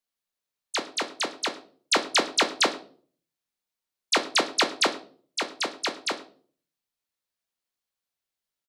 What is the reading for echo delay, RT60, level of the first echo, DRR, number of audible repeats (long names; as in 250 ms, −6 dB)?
109 ms, 0.45 s, −21.5 dB, 7.5 dB, 1